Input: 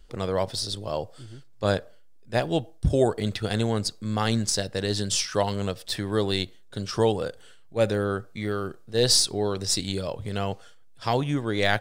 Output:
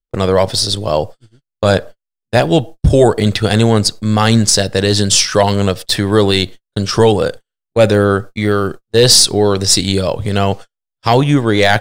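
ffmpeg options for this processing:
ffmpeg -i in.wav -af "agate=range=-49dB:threshold=-38dB:ratio=16:detection=peak,apsyclip=16.5dB,volume=-2dB" out.wav

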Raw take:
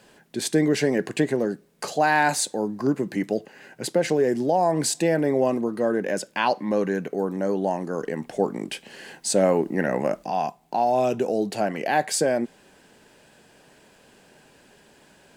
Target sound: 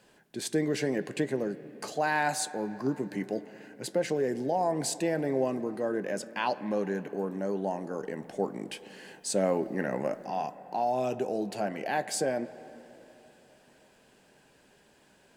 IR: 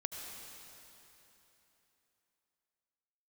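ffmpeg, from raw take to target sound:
-filter_complex "[0:a]asplit=2[link_01][link_02];[1:a]atrim=start_sample=2205,lowpass=2500,adelay=15[link_03];[link_02][link_03]afir=irnorm=-1:irlink=0,volume=-11dB[link_04];[link_01][link_04]amix=inputs=2:normalize=0,volume=-7.5dB"

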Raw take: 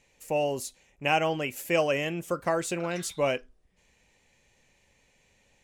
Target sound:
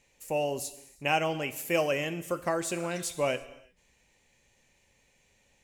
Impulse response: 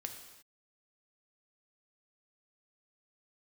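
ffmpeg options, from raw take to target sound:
-filter_complex "[0:a]asplit=2[link_01][link_02];[1:a]atrim=start_sample=2205,highshelf=frequency=5700:gain=10.5[link_03];[link_02][link_03]afir=irnorm=-1:irlink=0,volume=-3.5dB[link_04];[link_01][link_04]amix=inputs=2:normalize=0,volume=-5.5dB"

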